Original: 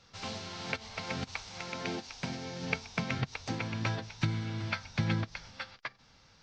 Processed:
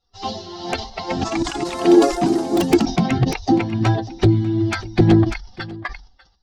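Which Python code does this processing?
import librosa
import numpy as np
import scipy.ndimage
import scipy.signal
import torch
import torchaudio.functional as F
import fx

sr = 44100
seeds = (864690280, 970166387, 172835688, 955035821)

y = fx.bin_expand(x, sr, power=2.0)
y = scipy.signal.sosfilt(scipy.signal.butter(4, 5500.0, 'lowpass', fs=sr, output='sos'), y)
y = fx.fold_sine(y, sr, drive_db=14, ceiling_db=-15.0)
y = fx.low_shelf(y, sr, hz=230.0, db=10.0)
y = y + 10.0 ** (-20.5 / 20.0) * np.pad(y, (int(595 * sr / 1000.0), 0))[:len(y)]
y = fx.echo_pitch(y, sr, ms=286, semitones=4, count=3, db_per_echo=-3.0, at=(0.76, 3.04))
y = fx.small_body(y, sr, hz=(340.0, 730.0), ring_ms=50, db=16)
y = fx.sustainer(y, sr, db_per_s=110.0)
y = y * librosa.db_to_amplitude(-3.0)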